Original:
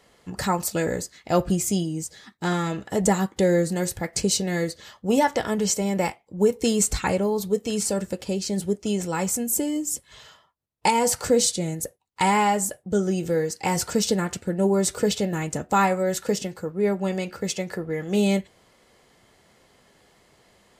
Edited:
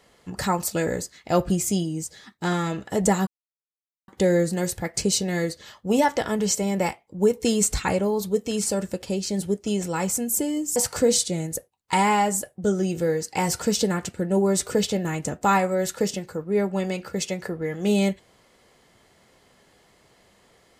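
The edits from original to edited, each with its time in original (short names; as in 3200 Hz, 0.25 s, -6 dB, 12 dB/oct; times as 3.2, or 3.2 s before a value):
3.27 insert silence 0.81 s
9.95–11.04 cut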